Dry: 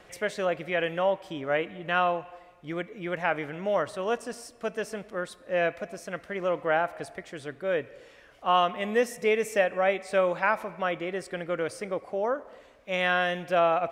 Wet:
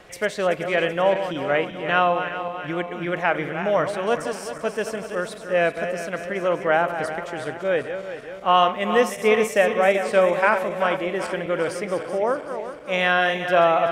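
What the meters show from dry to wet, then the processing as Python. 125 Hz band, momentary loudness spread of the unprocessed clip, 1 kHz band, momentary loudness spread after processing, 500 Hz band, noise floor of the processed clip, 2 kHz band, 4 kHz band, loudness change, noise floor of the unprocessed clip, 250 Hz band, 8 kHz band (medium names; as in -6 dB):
+6.5 dB, 11 LU, +6.5 dB, 10 LU, +6.5 dB, -37 dBFS, +6.5 dB, +6.5 dB, +6.0 dB, -55 dBFS, +6.5 dB, +6.5 dB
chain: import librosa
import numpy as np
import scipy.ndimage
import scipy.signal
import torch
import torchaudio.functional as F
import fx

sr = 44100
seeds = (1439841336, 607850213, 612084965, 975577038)

y = fx.reverse_delay_fb(x, sr, ms=191, feedback_pct=71, wet_db=-9)
y = y * 10.0 ** (5.5 / 20.0)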